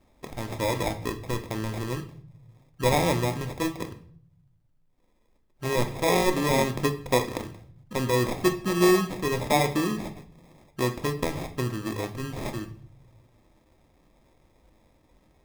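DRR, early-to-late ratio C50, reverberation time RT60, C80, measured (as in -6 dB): 6.0 dB, 12.5 dB, 0.60 s, 16.5 dB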